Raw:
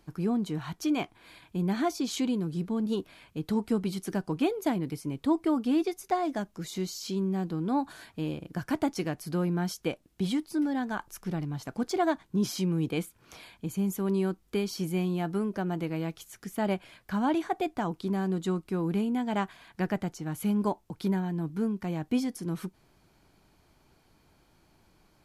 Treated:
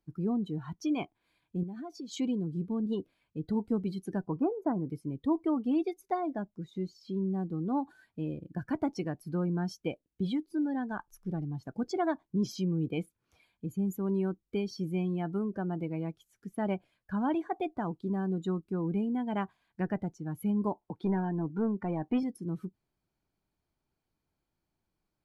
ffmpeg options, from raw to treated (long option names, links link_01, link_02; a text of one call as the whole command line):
ffmpeg -i in.wav -filter_complex "[0:a]asettb=1/sr,asplit=3[link_01][link_02][link_03];[link_01]atrim=end=1.634[link_04];[link_02]atrim=start=1.63:end=2.12,asetpts=PTS-STARTPTS,afade=type=in:duration=0.004:curve=qsin,afade=type=out:start_time=0.486:duration=0.004:curve=qsin,acompressor=threshold=-35dB:ratio=6:attack=3.2:release=140:knee=1:detection=peak[link_05];[link_03]atrim=start=2.116[link_06];[link_04][link_05]acrossfade=duration=0.004:curve1=hsin:curve2=qsin[link_07];[link_07][link_06]acrossfade=duration=0.004:curve1=qsin:curve2=hsin,asettb=1/sr,asplit=3[link_08][link_09][link_10];[link_08]atrim=end=4.274[link_11];[link_09]atrim=start=4.27:end=4.88,asetpts=PTS-STARTPTS,afade=type=in:duration=0.004:curve=qsin,afade=type=out:start_time=0.606:duration=0.004:curve=qsin,highshelf=frequency=2000:width_type=q:width=1.5:gain=-14[link_12];[link_10]atrim=start=4.876[link_13];[link_11][link_12]acrossfade=duration=0.004:curve1=hsin:curve2=qsin[link_14];[link_14][link_13]acrossfade=duration=0.004:curve1=qsin:curve2=hsin,asettb=1/sr,asplit=3[link_15][link_16][link_17];[link_15]atrim=end=6.204[link_18];[link_16]atrim=start=6.2:end=7.26,asetpts=PTS-STARTPTS,afade=type=in:duration=0.004:curve=qsin,afade=type=out:start_time=1.056:duration=0.004:curve=qsin,highshelf=frequency=4500:gain=-10[link_19];[link_17]atrim=start=7.256[link_20];[link_18][link_19]acrossfade=duration=0.004:curve1=hsin:curve2=qsin[link_21];[link_21][link_20]acrossfade=duration=0.004:curve1=qsin:curve2=hsin,asettb=1/sr,asplit=3[link_22][link_23][link_24];[link_22]atrim=end=20.814[link_25];[link_23]atrim=start=20.81:end=22.23,asetpts=PTS-STARTPTS,afade=type=in:duration=0.004:curve=qsin,afade=type=out:start_time=1.416:duration=0.004:curve=qsin,asplit=2[link_26][link_27];[link_27]highpass=frequency=720:poles=1,volume=18dB,asoftclip=type=tanh:threshold=-16.5dB[link_28];[link_26][link_28]amix=inputs=2:normalize=0,lowpass=frequency=1100:poles=1,volume=-6dB[link_29];[link_24]atrim=start=22.226[link_30];[link_25][link_29]acrossfade=duration=0.004:curve1=hsin:curve2=qsin[link_31];[link_31][link_30]acrossfade=duration=0.004:curve1=qsin:curve2=hsin,afftdn=noise_reduction=18:noise_floor=-39,lowshelf=frequency=380:gain=3,volume=-4.5dB" out.wav